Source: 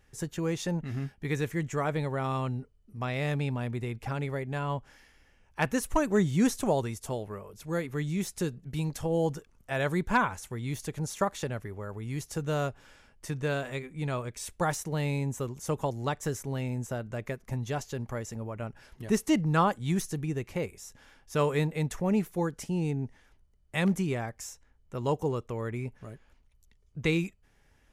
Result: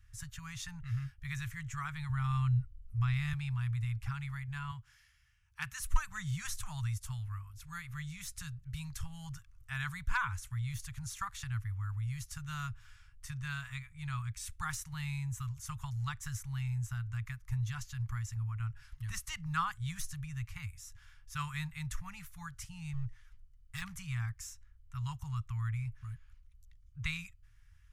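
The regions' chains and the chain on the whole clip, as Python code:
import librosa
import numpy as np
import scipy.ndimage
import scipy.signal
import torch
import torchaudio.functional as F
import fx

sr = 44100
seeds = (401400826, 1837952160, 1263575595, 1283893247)

y = fx.chain(x, sr, fx.low_shelf(hz=130.0, db=11.0),
    fx.notch(hz=5600.0, q=24.0), at=(2.09, 3.33))
y = fx.chain(y, sr, fx.highpass(hz=190.0, slope=6),
    fx.peak_eq(hz=980.0, db=-4.0, octaves=2.6), at=(4.71, 5.8))
y = fx.chain(y, sr, fx.clip_hard(threshold_db=-32.0),
    fx.comb(ms=6.3, depth=0.47), at=(22.93, 23.82))
y = scipy.signal.sosfilt(scipy.signal.ellip(3, 1.0, 50, [110.0, 1200.0], 'bandstop', fs=sr, output='sos'), y)
y = fx.low_shelf(y, sr, hz=350.0, db=11.0)
y = y * librosa.db_to_amplitude(-4.5)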